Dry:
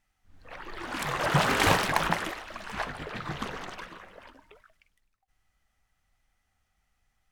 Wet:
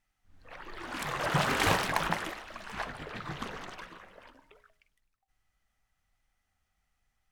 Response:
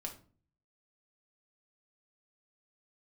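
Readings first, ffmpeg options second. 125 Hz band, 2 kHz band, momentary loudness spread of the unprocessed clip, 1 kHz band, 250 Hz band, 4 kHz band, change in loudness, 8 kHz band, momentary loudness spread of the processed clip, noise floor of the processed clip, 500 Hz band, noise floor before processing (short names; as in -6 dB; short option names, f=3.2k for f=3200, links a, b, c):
-4.0 dB, -3.5 dB, 20 LU, -3.5 dB, -4.0 dB, -3.5 dB, -3.5 dB, -3.5 dB, 20 LU, -80 dBFS, -4.0 dB, -77 dBFS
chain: -af "bandreject=f=69.66:t=h:w=4,bandreject=f=139.32:t=h:w=4,bandreject=f=208.98:t=h:w=4,bandreject=f=278.64:t=h:w=4,bandreject=f=348.3:t=h:w=4,bandreject=f=417.96:t=h:w=4,bandreject=f=487.62:t=h:w=4,bandreject=f=557.28:t=h:w=4,bandreject=f=626.94:t=h:w=4,bandreject=f=696.6:t=h:w=4,bandreject=f=766.26:t=h:w=4,bandreject=f=835.92:t=h:w=4,bandreject=f=905.58:t=h:w=4,bandreject=f=975.24:t=h:w=4,volume=-3.5dB"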